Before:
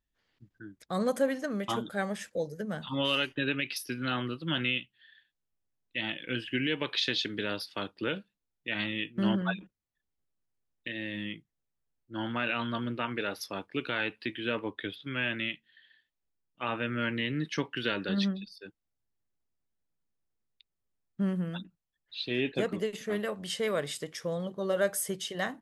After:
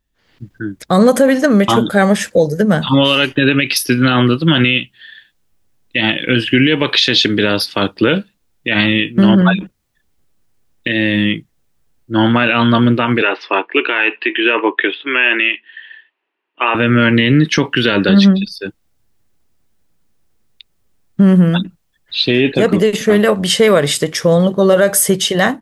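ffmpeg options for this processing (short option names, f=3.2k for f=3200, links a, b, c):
-filter_complex "[0:a]asettb=1/sr,asplit=3[a][b][c];[a]atrim=end=13.224[d];[b]atrim=start=13.22:end=16.75,asetpts=PTS-STARTPTS,afade=t=in:d=0.004:c=qsin,afade=t=out:st=3.526:d=0.004:c=qsin,highpass=f=350:w=0.5412,highpass=f=350:w=1.3066,equalizer=f=360:t=q:w=4:g=5,equalizer=f=530:t=q:w=4:g=-5,equalizer=f=990:t=q:w=4:g=6,equalizer=f=1.8k:t=q:w=4:g=5,equalizer=f=2.7k:t=q:w=4:g=9,lowpass=f=3k:w=0.5412,lowpass=f=3k:w=1.3066[e];[c]atrim=start=16.746[f];[d][e]acrossfade=d=0.004:c1=hsin:c2=qsin[g];[g][f]acrossfade=d=0.004:c1=qsin:c2=hsin,lowshelf=f=460:g=3,dynaudnorm=f=170:g=3:m=11dB,alimiter=level_in=11dB:limit=-1dB:release=50:level=0:latency=1,volume=-1dB"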